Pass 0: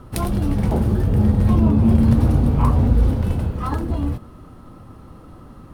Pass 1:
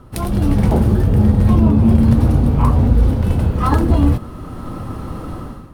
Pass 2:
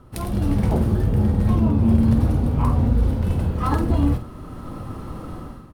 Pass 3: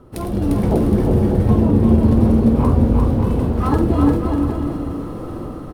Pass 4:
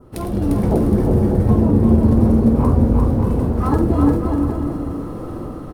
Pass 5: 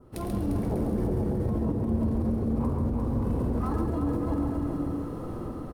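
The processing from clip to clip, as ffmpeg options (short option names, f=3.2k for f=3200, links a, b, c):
-af "dynaudnorm=f=140:g=5:m=15.5dB,volume=-1dB"
-filter_complex "[0:a]asplit=2[a][b];[b]adelay=49,volume=-10dB[c];[a][c]amix=inputs=2:normalize=0,volume=-6dB"
-filter_complex "[0:a]equalizer=f=400:w=0.82:g=9,asplit=2[a][b];[b]aecho=0:1:350|595|766.5|886.6|970.6:0.631|0.398|0.251|0.158|0.1[c];[a][c]amix=inputs=2:normalize=0,volume=-1dB"
-af "adynamicequalizer=threshold=0.00398:dfrequency=3100:dqfactor=1.2:tfrequency=3100:tqfactor=1.2:attack=5:release=100:ratio=0.375:range=3.5:mode=cutabove:tftype=bell"
-filter_complex "[0:a]alimiter=limit=-13.5dB:level=0:latency=1,asplit=2[a][b];[b]aecho=0:1:137:0.562[c];[a][c]amix=inputs=2:normalize=0,volume=-8dB"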